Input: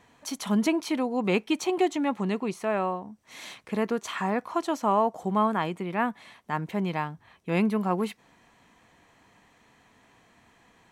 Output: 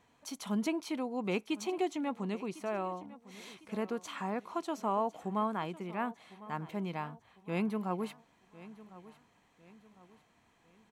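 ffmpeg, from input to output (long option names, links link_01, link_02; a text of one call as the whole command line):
ffmpeg -i in.wav -af "equalizer=frequency=1800:width=6.9:gain=-4.5,aecho=1:1:1053|2106|3159:0.126|0.0504|0.0201,volume=-8.5dB" out.wav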